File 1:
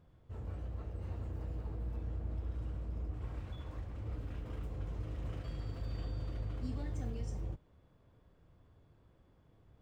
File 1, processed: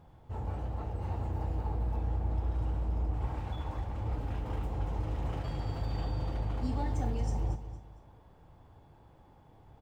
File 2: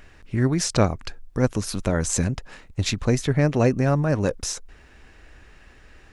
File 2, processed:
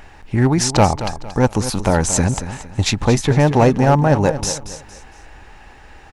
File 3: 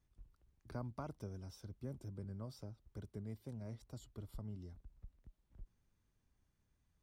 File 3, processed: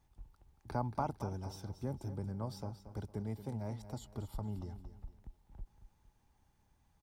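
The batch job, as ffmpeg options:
-filter_complex "[0:a]equalizer=f=840:t=o:w=0.36:g=14,asplit=2[a][b];[b]aeval=exprs='0.224*(abs(mod(val(0)/0.224+3,4)-2)-1)':c=same,volume=-4dB[c];[a][c]amix=inputs=2:normalize=0,aecho=1:1:229|458|687:0.251|0.0854|0.029,volume=2dB"

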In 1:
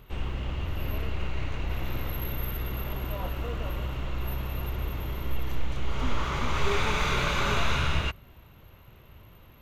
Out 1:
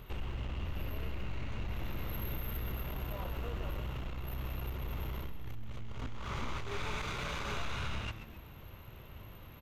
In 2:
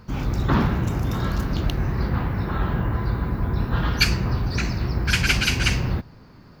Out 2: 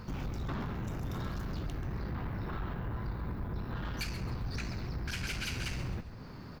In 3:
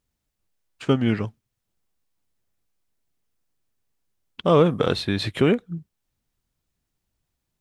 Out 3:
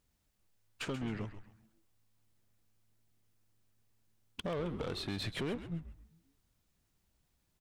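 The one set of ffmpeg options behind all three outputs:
-filter_complex "[0:a]acompressor=threshold=-35dB:ratio=4,aeval=exprs='(tanh(50.1*val(0)+0.3)-tanh(0.3))/50.1':c=same,asplit=5[a][b][c][d][e];[b]adelay=133,afreqshift=-110,volume=-11dB[f];[c]adelay=266,afreqshift=-220,volume=-19.6dB[g];[d]adelay=399,afreqshift=-330,volume=-28.3dB[h];[e]adelay=532,afreqshift=-440,volume=-36.9dB[i];[a][f][g][h][i]amix=inputs=5:normalize=0,volume=2dB"

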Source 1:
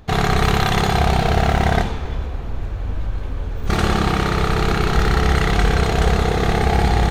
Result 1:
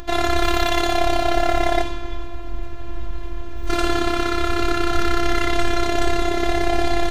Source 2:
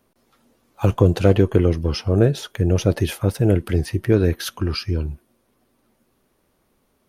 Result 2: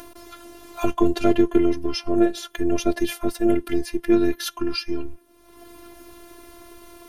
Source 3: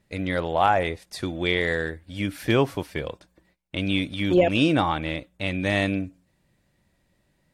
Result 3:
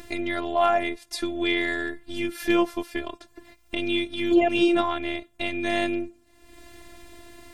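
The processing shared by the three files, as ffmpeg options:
-af "afftfilt=real='hypot(re,im)*cos(PI*b)':imag='0':win_size=512:overlap=0.75,acompressor=mode=upward:threshold=-26dB:ratio=2.5,volume=2.5dB"

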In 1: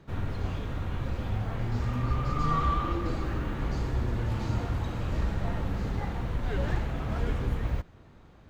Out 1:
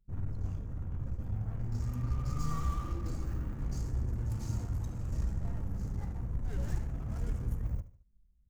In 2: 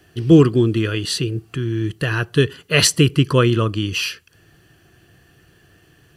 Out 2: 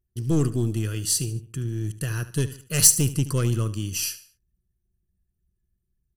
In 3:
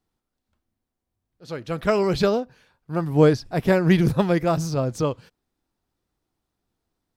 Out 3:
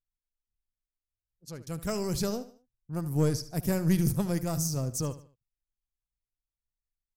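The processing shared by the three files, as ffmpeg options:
-filter_complex "[0:a]aeval=exprs='(tanh(2.51*val(0)+0.35)-tanh(0.35))/2.51':c=same,aexciter=amount=5.7:drive=6.5:freq=5.3k,anlmdn=1,bass=f=250:g=10,treble=f=4k:g=5,asplit=2[a][b];[b]aecho=0:1:74|148|222:0.178|0.0658|0.0243[c];[a][c]amix=inputs=2:normalize=0,volume=-13dB"

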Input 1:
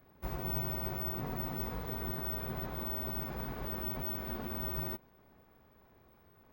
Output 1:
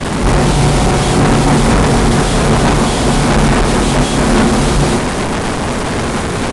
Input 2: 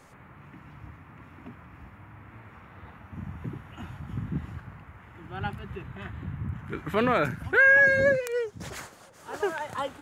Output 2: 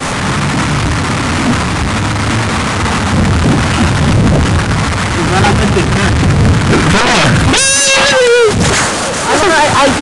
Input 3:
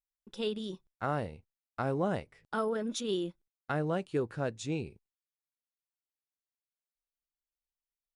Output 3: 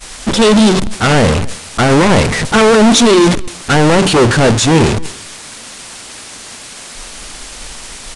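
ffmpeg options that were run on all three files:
-filter_complex "[0:a]aeval=exprs='val(0)+0.5*0.0422*sgn(val(0))':c=same,equalizer=f=230:t=o:w=0.67:g=4.5,bandreject=f=63.68:t=h:w=4,bandreject=f=127.36:t=h:w=4,bandreject=f=191.04:t=h:w=4,bandreject=f=254.72:t=h:w=4,bandreject=f=318.4:t=h:w=4,bandreject=f=382.08:t=h:w=4,aeval=exprs='0.335*sin(PI/2*5.62*val(0)/0.335)':c=same,asplit=2[a][b];[b]aecho=0:1:272:0.126[c];[a][c]amix=inputs=2:normalize=0,agate=range=-33dB:threshold=-9dB:ratio=3:detection=peak,aresample=22050,aresample=44100,volume=7dB"

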